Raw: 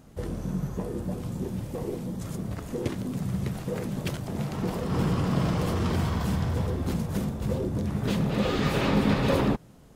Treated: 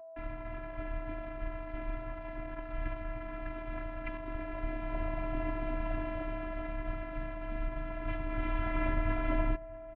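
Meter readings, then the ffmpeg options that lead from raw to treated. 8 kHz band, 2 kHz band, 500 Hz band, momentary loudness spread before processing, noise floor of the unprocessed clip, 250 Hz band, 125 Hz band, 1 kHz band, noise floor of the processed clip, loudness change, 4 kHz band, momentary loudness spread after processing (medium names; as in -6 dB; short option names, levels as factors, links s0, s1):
under -35 dB, -4.5 dB, -8.0 dB, 9 LU, -51 dBFS, -12.5 dB, -14.5 dB, -6.0 dB, -44 dBFS, -9.5 dB, -19.0 dB, 9 LU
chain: -filter_complex "[0:a]acrusher=bits=5:mix=0:aa=0.000001,aeval=exprs='val(0)+0.00708*sin(2*PI*1100*n/s)':c=same,afftfilt=real='hypot(re,im)*cos(PI*b)':imag='0':win_size=512:overlap=0.75,asplit=2[s0][s1];[s1]adelay=641.4,volume=0.112,highshelf=f=4000:g=-14.4[s2];[s0][s2]amix=inputs=2:normalize=0,highpass=f=170:t=q:w=0.5412,highpass=f=170:t=q:w=1.307,lowpass=f=2700:t=q:w=0.5176,lowpass=f=2700:t=q:w=0.7071,lowpass=f=2700:t=q:w=1.932,afreqshift=-380"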